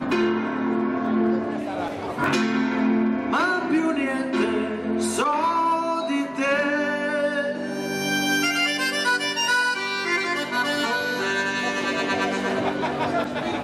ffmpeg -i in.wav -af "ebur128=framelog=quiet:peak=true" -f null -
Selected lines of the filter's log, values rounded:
Integrated loudness:
  I:         -23.1 LUFS
  Threshold: -33.1 LUFS
Loudness range:
  LRA:         1.6 LU
  Threshold: -42.9 LUFS
  LRA low:   -23.5 LUFS
  LRA high:  -22.0 LUFS
True peak:
  Peak:      -13.2 dBFS